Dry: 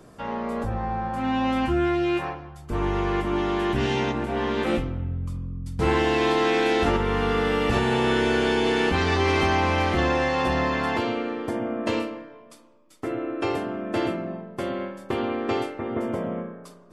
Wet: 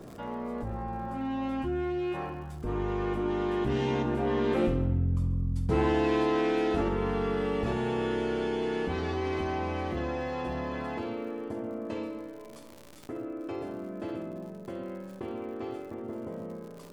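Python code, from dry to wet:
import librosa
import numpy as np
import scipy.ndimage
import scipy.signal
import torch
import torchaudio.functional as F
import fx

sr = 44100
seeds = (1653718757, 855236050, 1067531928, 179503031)

y = fx.doppler_pass(x, sr, speed_mps=8, closest_m=6.7, pass_at_s=5.18)
y = fx.low_shelf(y, sr, hz=250.0, db=-8.0)
y = fx.dmg_crackle(y, sr, seeds[0], per_s=110.0, level_db=-53.0)
y = fx.tilt_shelf(y, sr, db=7.0, hz=650.0)
y = fx.echo_feedback(y, sr, ms=68, feedback_pct=54, wet_db=-14.5)
y = fx.env_flatten(y, sr, amount_pct=50)
y = F.gain(torch.from_numpy(y), -2.5).numpy()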